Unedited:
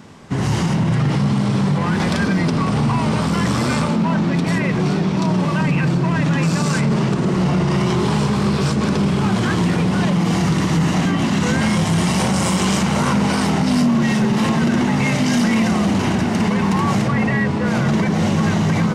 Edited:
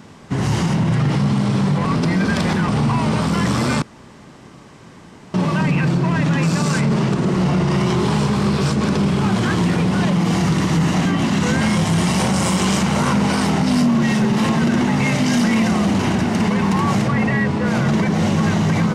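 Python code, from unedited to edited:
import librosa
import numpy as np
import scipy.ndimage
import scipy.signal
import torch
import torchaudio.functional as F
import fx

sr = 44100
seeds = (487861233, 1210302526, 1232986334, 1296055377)

y = fx.edit(x, sr, fx.reverse_span(start_s=1.85, length_s=0.83),
    fx.room_tone_fill(start_s=3.82, length_s=1.52), tone=tone)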